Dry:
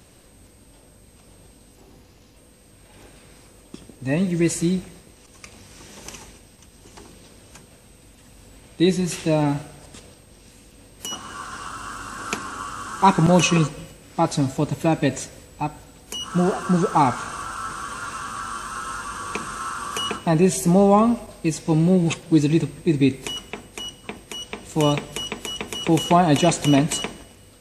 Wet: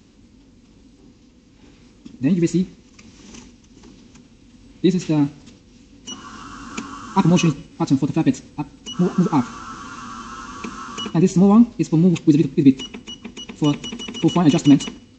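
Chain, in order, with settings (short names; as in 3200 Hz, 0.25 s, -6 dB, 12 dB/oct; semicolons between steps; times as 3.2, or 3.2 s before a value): downsampling 16000 Hz; time stretch by phase-locked vocoder 0.55×; fifteen-band EQ 250 Hz +11 dB, 630 Hz -10 dB, 1600 Hz -4 dB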